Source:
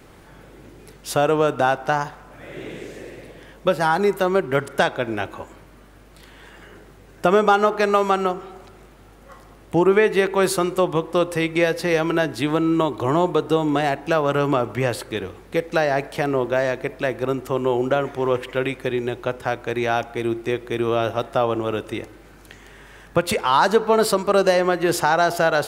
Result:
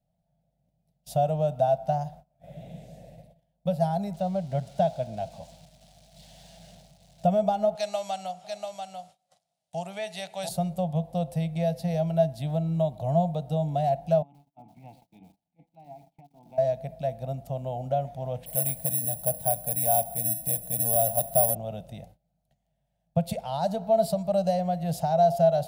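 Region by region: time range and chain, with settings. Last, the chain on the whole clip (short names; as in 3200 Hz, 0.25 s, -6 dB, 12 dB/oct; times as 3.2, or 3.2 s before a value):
4.14–7.25 switching spikes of -19.5 dBFS + air absorption 110 m
7.75–10.49 weighting filter ITU-R 468 + echo 0.69 s -5.5 dB
14.22–16.58 vowel filter u + negative-ratio compressor -38 dBFS + lo-fi delay 0.123 s, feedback 55%, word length 7-bit, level -10 dB
18.46–21.55 G.711 law mismatch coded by mu + careless resampling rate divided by 4×, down none, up zero stuff
whole clip: gate -39 dBFS, range -23 dB; EQ curve 100 Hz 0 dB, 170 Hz +10 dB, 370 Hz -27 dB, 670 Hz +9 dB, 1100 Hz -23 dB, 1800 Hz -20 dB, 3900 Hz -7 dB, 6800 Hz -9 dB, 13000 Hz -3 dB; gain -6.5 dB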